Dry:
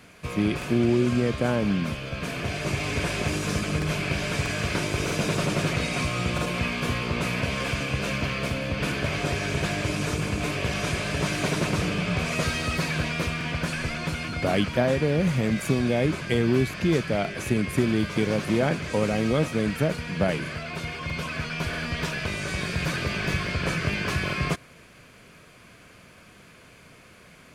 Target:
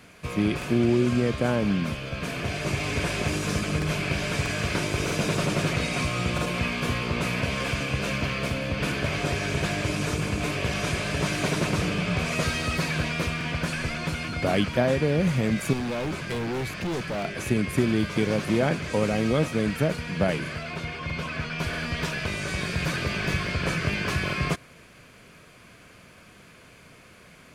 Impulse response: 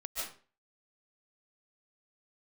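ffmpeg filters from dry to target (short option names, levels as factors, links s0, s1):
-filter_complex "[0:a]asettb=1/sr,asplit=3[s0][s1][s2];[s0]atrim=end=15.734[s3];[s1]atrim=start=15.73:end=17.25,asetpts=PTS-STARTPTS,afade=t=in:d=0.004:c=qsin,afade=t=out:st=1.516:d=0.004:c=qsin,volume=21.1,asoftclip=hard,volume=0.0473[s4];[s2]atrim=start=17.246[s5];[s3][s4]acrossfade=d=0.004:c1=hsin:c2=qsin[s6];[s6][s5]acrossfade=d=0.004:c1=qsin:c2=hsin,asettb=1/sr,asplit=3[s7][s8][s9];[s7]atrim=end=20.744[s10];[s8]atrim=start=20.74:end=21.59,asetpts=PTS-STARTPTS,afade=t=in:d=0.004:c=qsin,afade=t=out:st=0.846:d=0.004:c=qsin,highshelf=f=7300:g=-10[s11];[s9]atrim=start=21.586[s12];[s10][s11]acrossfade=d=0.004:c1=hsin:c2=qsin[s13];[s13][s12]acrossfade=d=0.004:c1=qsin:c2=hsin"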